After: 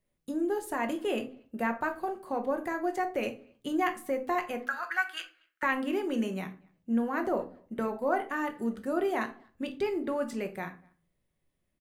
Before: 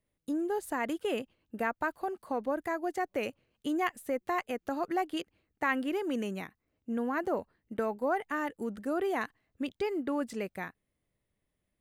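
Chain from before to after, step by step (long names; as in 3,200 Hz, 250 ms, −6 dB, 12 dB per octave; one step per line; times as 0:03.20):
0:04.63–0:05.63: high-pass with resonance 1,500 Hz, resonance Q 7.8
far-end echo of a speakerphone 240 ms, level −29 dB
rectangular room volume 230 cubic metres, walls furnished, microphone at 1 metre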